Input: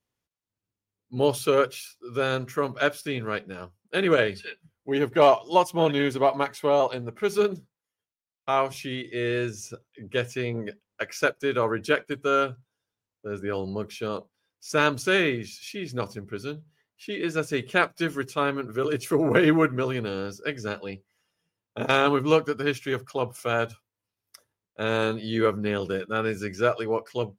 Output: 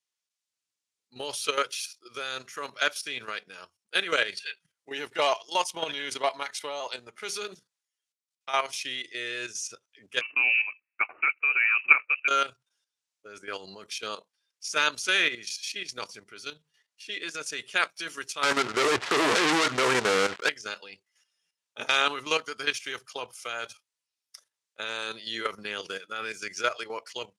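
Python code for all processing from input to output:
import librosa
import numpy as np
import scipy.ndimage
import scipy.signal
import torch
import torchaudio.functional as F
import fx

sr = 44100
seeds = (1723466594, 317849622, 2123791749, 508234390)

y = fx.chain(x, sr, fx.highpass(hz=130.0, slope=24),
    fx.leveller(passes=1),
    fx.freq_invert(carrier_hz=2800), at=(10.21, 12.28))
y = fx.chain(y, sr, fx.cvsd(bps=32000),
    fx.lowpass(hz=1800.0, slope=24),
    fx.leveller(passes=5), at=(18.43, 20.49))
y = fx.weighting(y, sr, curve='ITU-R 468')
y = fx.level_steps(y, sr, step_db=11)
y = y * librosa.db_to_amplitude(-1.0)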